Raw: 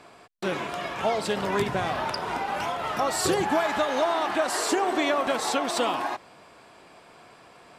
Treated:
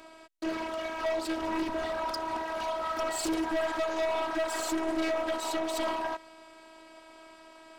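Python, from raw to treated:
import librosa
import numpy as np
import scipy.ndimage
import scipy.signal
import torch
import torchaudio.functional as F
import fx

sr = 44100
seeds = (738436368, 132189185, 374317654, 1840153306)

y = fx.robotise(x, sr, hz=323.0)
y = np.clip(10.0 ** (28.0 / 20.0) * y, -1.0, 1.0) / 10.0 ** (28.0 / 20.0)
y = fx.doppler_dist(y, sr, depth_ms=0.2)
y = y * 10.0 ** (1.5 / 20.0)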